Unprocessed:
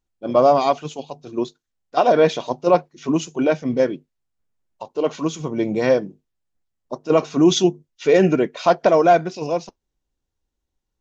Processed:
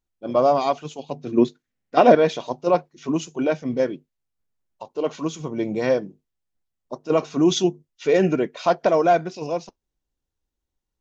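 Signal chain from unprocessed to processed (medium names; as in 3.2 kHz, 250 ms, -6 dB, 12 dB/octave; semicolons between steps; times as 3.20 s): 1.09–2.15 s: graphic EQ 125/250/500/2000 Hz +8/+11/+5/+11 dB; trim -3.5 dB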